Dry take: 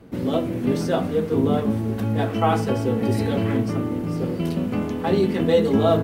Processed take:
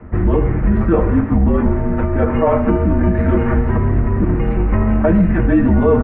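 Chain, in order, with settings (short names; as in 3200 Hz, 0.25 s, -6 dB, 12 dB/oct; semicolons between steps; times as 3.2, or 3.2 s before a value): 3.15–4.01 CVSD 32 kbps; comb 7.3 ms, depth 52%; in parallel at 0 dB: vocal rider 0.5 s; on the sum: limiter -9.5 dBFS, peak gain reduction 9 dB; echo 0.136 s -13.5 dB; mistuned SSB -200 Hz 210–2200 Hz; speakerphone echo 80 ms, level -30 dB; gain +5.5 dB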